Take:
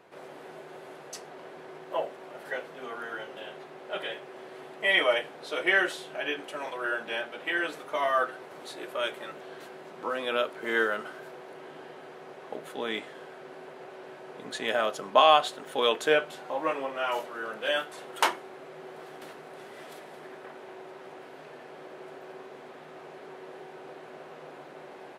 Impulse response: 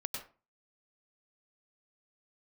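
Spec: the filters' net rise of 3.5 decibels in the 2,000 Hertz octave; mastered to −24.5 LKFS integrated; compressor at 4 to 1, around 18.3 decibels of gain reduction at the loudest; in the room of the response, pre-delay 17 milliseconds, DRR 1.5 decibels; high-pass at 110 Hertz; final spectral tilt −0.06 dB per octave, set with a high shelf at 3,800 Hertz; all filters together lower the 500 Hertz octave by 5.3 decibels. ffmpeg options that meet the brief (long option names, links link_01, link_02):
-filter_complex "[0:a]highpass=110,equalizer=frequency=500:width_type=o:gain=-7,equalizer=frequency=2000:width_type=o:gain=6.5,highshelf=frequency=3800:gain=-7.5,acompressor=threshold=-39dB:ratio=4,asplit=2[link_01][link_02];[1:a]atrim=start_sample=2205,adelay=17[link_03];[link_02][link_03]afir=irnorm=-1:irlink=0,volume=-2.5dB[link_04];[link_01][link_04]amix=inputs=2:normalize=0,volume=16dB"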